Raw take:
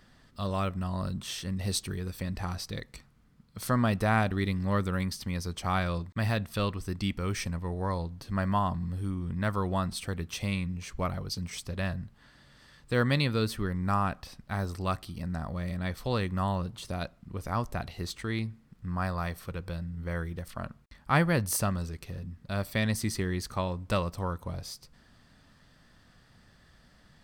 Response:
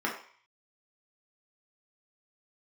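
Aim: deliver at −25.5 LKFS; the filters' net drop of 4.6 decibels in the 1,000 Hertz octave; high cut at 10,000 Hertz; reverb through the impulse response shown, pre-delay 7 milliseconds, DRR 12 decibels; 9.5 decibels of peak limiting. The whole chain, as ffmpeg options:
-filter_complex "[0:a]lowpass=10000,equalizer=frequency=1000:width_type=o:gain=-6,alimiter=limit=-22dB:level=0:latency=1,asplit=2[link_01][link_02];[1:a]atrim=start_sample=2205,adelay=7[link_03];[link_02][link_03]afir=irnorm=-1:irlink=0,volume=-21dB[link_04];[link_01][link_04]amix=inputs=2:normalize=0,volume=9dB"

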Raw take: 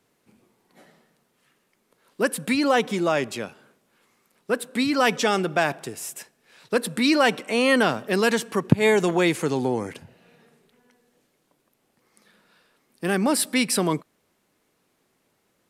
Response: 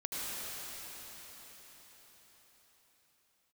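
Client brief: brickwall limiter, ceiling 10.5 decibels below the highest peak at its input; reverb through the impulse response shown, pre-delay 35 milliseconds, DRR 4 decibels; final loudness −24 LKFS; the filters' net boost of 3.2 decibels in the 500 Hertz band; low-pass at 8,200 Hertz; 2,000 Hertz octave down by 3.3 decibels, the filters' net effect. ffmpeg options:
-filter_complex "[0:a]lowpass=8200,equalizer=frequency=500:width_type=o:gain=4,equalizer=frequency=2000:width_type=o:gain=-4.5,alimiter=limit=-11dB:level=0:latency=1,asplit=2[link_01][link_02];[1:a]atrim=start_sample=2205,adelay=35[link_03];[link_02][link_03]afir=irnorm=-1:irlink=0,volume=-9dB[link_04];[link_01][link_04]amix=inputs=2:normalize=0,volume=-1.5dB"

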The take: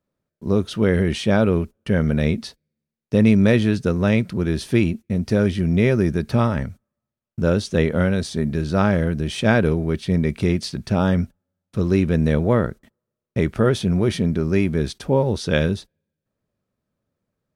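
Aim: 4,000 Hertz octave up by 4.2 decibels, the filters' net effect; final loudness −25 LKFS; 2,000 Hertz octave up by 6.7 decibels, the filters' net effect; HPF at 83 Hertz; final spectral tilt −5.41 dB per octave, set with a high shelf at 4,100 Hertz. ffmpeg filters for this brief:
ffmpeg -i in.wav -af "highpass=83,equalizer=frequency=2000:width_type=o:gain=8.5,equalizer=frequency=4000:width_type=o:gain=4.5,highshelf=frequency=4100:gain=-4,volume=-5dB" out.wav

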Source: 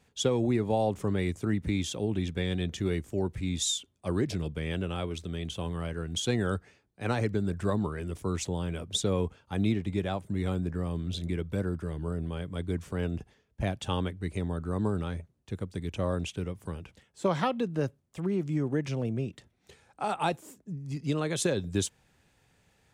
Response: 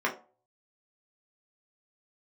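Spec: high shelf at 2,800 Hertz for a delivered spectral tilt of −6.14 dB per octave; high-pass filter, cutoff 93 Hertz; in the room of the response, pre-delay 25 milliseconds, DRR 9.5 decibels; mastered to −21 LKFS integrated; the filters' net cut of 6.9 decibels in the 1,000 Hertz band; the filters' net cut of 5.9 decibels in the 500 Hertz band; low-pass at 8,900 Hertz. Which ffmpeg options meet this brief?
-filter_complex "[0:a]highpass=93,lowpass=8900,equalizer=frequency=500:width_type=o:gain=-6,equalizer=frequency=1000:width_type=o:gain=-6.5,highshelf=frequency=2800:gain=-5,asplit=2[link_01][link_02];[1:a]atrim=start_sample=2205,adelay=25[link_03];[link_02][link_03]afir=irnorm=-1:irlink=0,volume=-20.5dB[link_04];[link_01][link_04]amix=inputs=2:normalize=0,volume=13.5dB"

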